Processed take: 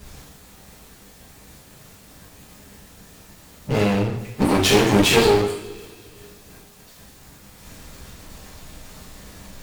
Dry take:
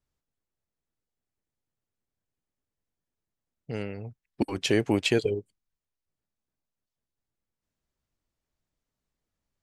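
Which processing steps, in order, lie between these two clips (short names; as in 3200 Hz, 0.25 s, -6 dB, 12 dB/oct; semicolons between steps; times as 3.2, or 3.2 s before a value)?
power-law curve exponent 0.5; two-slope reverb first 0.59 s, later 2.7 s, from -25 dB, DRR -7.5 dB; one-sided clip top -23.5 dBFS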